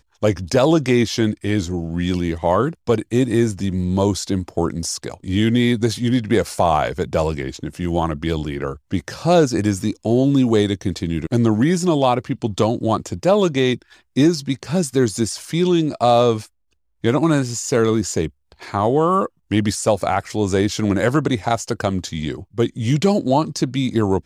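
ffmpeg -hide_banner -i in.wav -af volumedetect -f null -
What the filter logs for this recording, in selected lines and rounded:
mean_volume: -18.9 dB
max_volume: -2.0 dB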